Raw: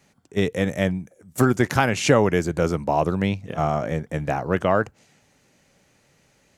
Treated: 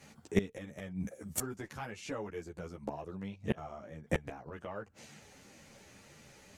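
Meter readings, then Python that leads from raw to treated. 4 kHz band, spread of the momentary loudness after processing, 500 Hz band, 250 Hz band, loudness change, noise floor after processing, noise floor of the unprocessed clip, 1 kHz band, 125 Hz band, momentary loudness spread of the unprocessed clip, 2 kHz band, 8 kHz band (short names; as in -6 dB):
-17.5 dB, 22 LU, -18.0 dB, -15.5 dB, -17.0 dB, -61 dBFS, -62 dBFS, -21.5 dB, -17.5 dB, 9 LU, -18.0 dB, -10.0 dB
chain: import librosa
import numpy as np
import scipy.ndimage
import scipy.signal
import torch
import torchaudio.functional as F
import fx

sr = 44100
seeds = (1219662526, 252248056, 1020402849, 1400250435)

y = fx.cheby_harmonics(x, sr, harmonics=(2,), levels_db=(-20,), full_scale_db=-2.0)
y = fx.gate_flip(y, sr, shuts_db=-17.0, range_db=-26)
y = fx.ensemble(y, sr)
y = y * 10.0 ** (7.0 / 20.0)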